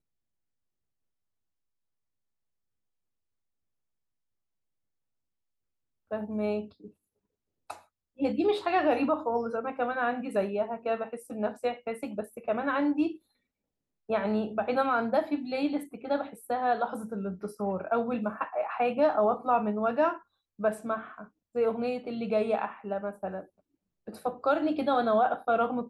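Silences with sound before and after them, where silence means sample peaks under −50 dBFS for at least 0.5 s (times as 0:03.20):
0:06.90–0:07.70
0:13.17–0:14.09
0:23.46–0:24.07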